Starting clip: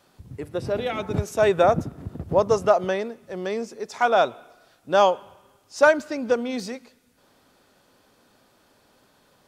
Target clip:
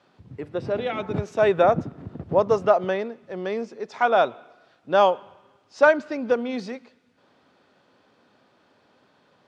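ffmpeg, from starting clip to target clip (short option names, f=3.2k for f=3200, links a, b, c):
-af "highpass=110,lowpass=3.7k"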